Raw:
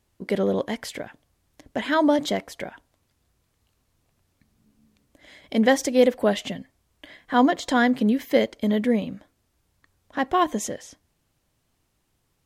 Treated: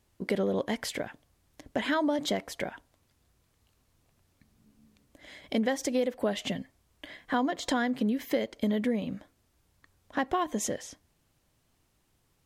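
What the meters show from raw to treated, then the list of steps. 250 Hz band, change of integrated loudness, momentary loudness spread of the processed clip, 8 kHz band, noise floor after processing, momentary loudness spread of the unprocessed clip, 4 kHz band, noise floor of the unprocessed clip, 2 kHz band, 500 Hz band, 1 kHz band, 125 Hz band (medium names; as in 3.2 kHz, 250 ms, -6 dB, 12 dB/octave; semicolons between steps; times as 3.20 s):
-7.0 dB, -8.0 dB, 14 LU, -3.0 dB, -72 dBFS, 16 LU, -4.5 dB, -72 dBFS, -6.5 dB, -8.0 dB, -8.5 dB, -5.5 dB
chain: compression 6:1, threshold -25 dBFS, peak gain reduction 12.5 dB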